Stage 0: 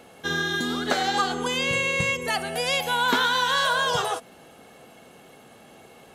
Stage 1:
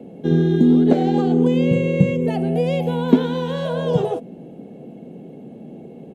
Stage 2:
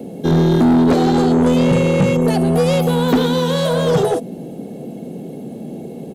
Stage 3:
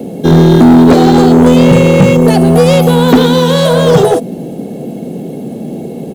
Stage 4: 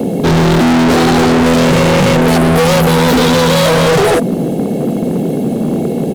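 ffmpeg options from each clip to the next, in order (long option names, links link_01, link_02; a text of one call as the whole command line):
ffmpeg -i in.wav -filter_complex "[0:a]firequalizer=gain_entry='entry(100,0);entry(160,11);entry(1200,-23);entry(2400,-11);entry(4800,-20)':delay=0.05:min_phase=1,acrossover=split=130|1200|2000[link_01][link_02][link_03][link_04];[link_02]acontrast=69[link_05];[link_01][link_05][link_03][link_04]amix=inputs=4:normalize=0,volume=3dB" out.wav
ffmpeg -i in.wav -af "aexciter=amount=4.4:drive=2.9:freq=3900,asoftclip=type=tanh:threshold=-17.5dB,volume=8dB" out.wav
ffmpeg -i in.wav -af "acrusher=bits=9:mode=log:mix=0:aa=0.000001,volume=8.5dB" out.wav
ffmpeg -i in.wav -af "volume=15.5dB,asoftclip=hard,volume=-15.5dB,volume=7dB" out.wav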